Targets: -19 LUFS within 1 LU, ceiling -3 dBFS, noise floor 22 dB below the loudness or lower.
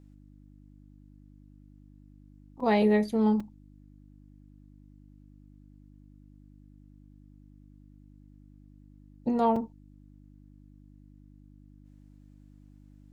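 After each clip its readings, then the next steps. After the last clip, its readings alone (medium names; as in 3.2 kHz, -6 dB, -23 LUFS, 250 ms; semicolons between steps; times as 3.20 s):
dropouts 3; longest dropout 4.0 ms; hum 50 Hz; highest harmonic 300 Hz; hum level -52 dBFS; loudness -27.0 LUFS; peak level -14.5 dBFS; loudness target -19.0 LUFS
-> interpolate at 2.60/3.40/9.56 s, 4 ms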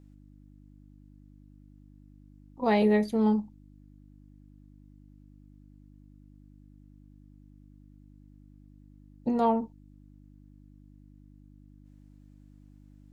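dropouts 0; hum 50 Hz; highest harmonic 300 Hz; hum level -52 dBFS
-> de-hum 50 Hz, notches 6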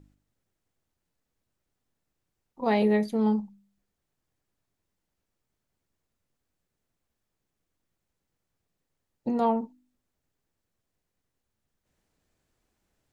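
hum not found; loudness -27.0 LUFS; peak level -14.5 dBFS; loudness target -19.0 LUFS
-> trim +8 dB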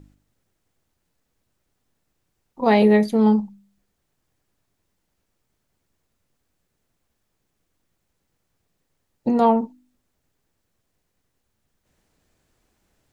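loudness -19.0 LUFS; peak level -6.5 dBFS; noise floor -75 dBFS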